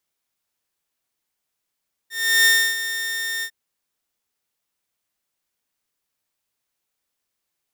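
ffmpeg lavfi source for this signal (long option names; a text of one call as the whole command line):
ffmpeg -f lavfi -i "aevalsrc='0.335*(2*mod(1820*t,1)-1)':duration=1.402:sample_rate=44100,afade=type=in:duration=0.352,afade=type=out:start_time=0.352:duration=0.299:silence=0.251,afade=type=out:start_time=1.33:duration=0.072" out.wav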